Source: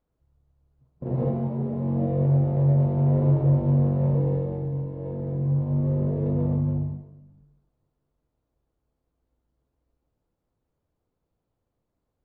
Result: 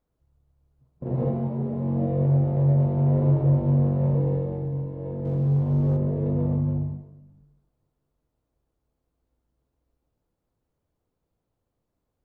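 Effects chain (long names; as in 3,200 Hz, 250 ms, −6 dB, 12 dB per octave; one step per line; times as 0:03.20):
0:05.25–0:05.97: leveller curve on the samples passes 1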